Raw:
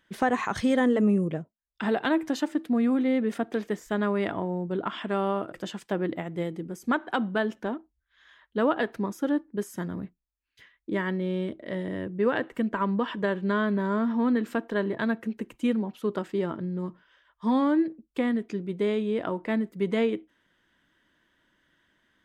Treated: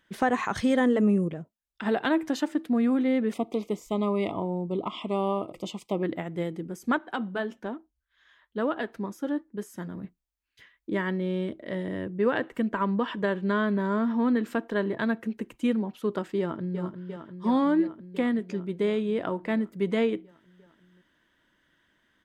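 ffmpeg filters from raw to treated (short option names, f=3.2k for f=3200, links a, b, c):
-filter_complex "[0:a]asplit=3[a][b][c];[a]afade=t=out:st=1.28:d=0.02[d];[b]acompressor=threshold=-31dB:ratio=6:attack=3.2:release=140:knee=1:detection=peak,afade=t=in:st=1.28:d=0.02,afade=t=out:st=1.85:d=0.02[e];[c]afade=t=in:st=1.85:d=0.02[f];[d][e][f]amix=inputs=3:normalize=0,asettb=1/sr,asplit=3[g][h][i];[g]atrim=end=3.334[j];[h]atrim=start=3.33:end=6.03,asetpts=PTS-STARTPTS,afade=t=in:d=0.004:c=qsin,afade=t=out:st=2.696:d=0.004:c=qsin,asuperstop=centerf=1600:order=12:qfactor=2.1[k];[i]atrim=start=6.026[l];[j][k]acrossfade=d=0.004:c1=hsin:c2=qsin[m];[m][l]acrossfade=d=0.004:c1=qsin:c2=hsin,asettb=1/sr,asplit=3[n][o][p];[n]atrim=end=6.984[q];[o]atrim=start=6.98:end=10.04,asetpts=PTS-STARTPTS,afade=t=in:d=0.004:c=qsin,afade=t=out:st=3.056:d=0.004:c=qsin,flanger=delay=2.7:depth=5:regen=-65:speed=1.1:shape=triangular[r];[p]atrim=start=10.036[s];[q][r]acrossfade=d=0.004:c1=hsin:c2=qsin[t];[t][s]acrossfade=d=0.004:c1=qsin:c2=hsin,asplit=2[u][v];[v]afade=t=in:st=16.39:d=0.01,afade=t=out:st=16.81:d=0.01,aecho=0:1:350|700|1050|1400|1750|2100|2450|2800|3150|3500|3850|4200:0.398107|0.318486|0.254789|0.203831|0.163065|0.130452|0.104361|0.0834891|0.0667913|0.053433|0.0427464|0.0341971[w];[u][w]amix=inputs=2:normalize=0"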